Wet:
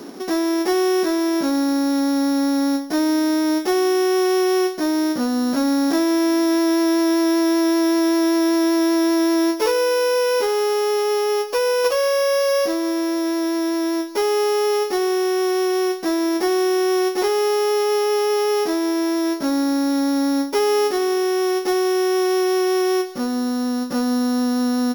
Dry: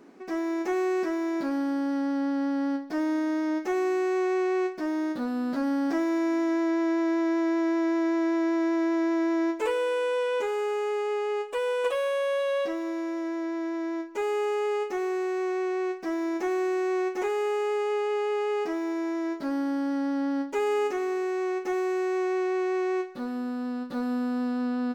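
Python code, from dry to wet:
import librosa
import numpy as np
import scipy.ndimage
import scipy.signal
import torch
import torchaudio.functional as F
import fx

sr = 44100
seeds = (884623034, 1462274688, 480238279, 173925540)

y = np.r_[np.sort(x[:len(x) // 8 * 8].reshape(-1, 8), axis=1).ravel(), x[len(x) // 8 * 8:]]
y = fx.band_squash(y, sr, depth_pct=40)
y = F.gain(torch.from_numpy(y), 8.0).numpy()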